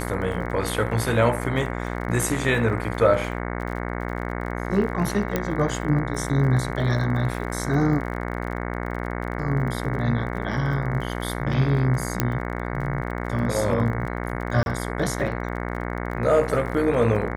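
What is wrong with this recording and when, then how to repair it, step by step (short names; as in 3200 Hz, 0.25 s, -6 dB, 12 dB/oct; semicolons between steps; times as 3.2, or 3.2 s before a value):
buzz 60 Hz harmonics 37 -29 dBFS
crackle 41/s -33 dBFS
5.36 pop -9 dBFS
12.2 pop -5 dBFS
14.63–14.66 gap 31 ms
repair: de-click; de-hum 60 Hz, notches 37; interpolate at 14.63, 31 ms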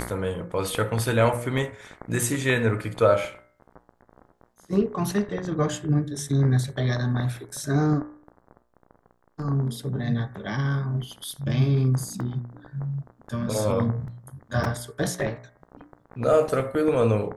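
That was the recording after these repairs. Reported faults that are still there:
12.2 pop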